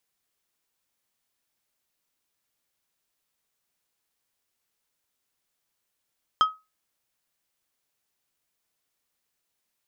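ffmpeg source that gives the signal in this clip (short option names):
-f lavfi -i "aevalsrc='0.237*pow(10,-3*t/0.24)*sin(2*PI*1270*t)+0.075*pow(10,-3*t/0.126)*sin(2*PI*3175*t)+0.0237*pow(10,-3*t/0.091)*sin(2*PI*5080*t)+0.0075*pow(10,-3*t/0.078)*sin(2*PI*6350*t)+0.00237*pow(10,-3*t/0.065)*sin(2*PI*8255*t)':d=0.89:s=44100"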